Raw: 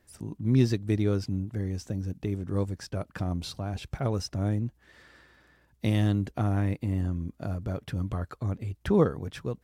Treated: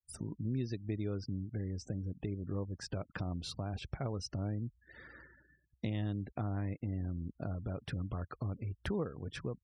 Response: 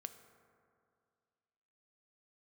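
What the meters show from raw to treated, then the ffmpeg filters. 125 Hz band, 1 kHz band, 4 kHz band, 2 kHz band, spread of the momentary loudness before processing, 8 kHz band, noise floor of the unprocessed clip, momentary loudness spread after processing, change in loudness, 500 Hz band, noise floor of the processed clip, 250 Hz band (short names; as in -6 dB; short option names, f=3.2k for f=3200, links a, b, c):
-9.5 dB, -9.5 dB, -6.5 dB, -7.0 dB, 11 LU, -6.5 dB, -66 dBFS, 4 LU, -10.0 dB, -11.0 dB, -76 dBFS, -10.0 dB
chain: -af "acompressor=threshold=-41dB:ratio=3,afftfilt=real='re*gte(hypot(re,im),0.00224)':imag='im*gte(hypot(re,im),0.00224)':win_size=1024:overlap=0.75,agate=range=-33dB:threshold=-56dB:ratio=3:detection=peak,volume=2.5dB"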